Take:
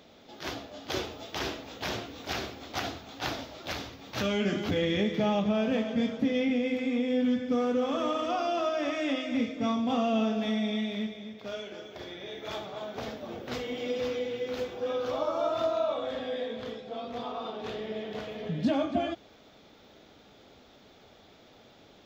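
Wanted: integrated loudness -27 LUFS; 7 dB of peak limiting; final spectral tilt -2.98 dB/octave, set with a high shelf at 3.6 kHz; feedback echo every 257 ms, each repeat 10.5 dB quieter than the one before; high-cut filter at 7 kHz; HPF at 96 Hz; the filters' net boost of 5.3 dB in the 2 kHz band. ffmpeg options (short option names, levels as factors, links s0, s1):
-af "highpass=96,lowpass=7000,equalizer=f=2000:t=o:g=4.5,highshelf=f=3600:g=6.5,alimiter=limit=0.0891:level=0:latency=1,aecho=1:1:257|514|771:0.299|0.0896|0.0269,volume=1.58"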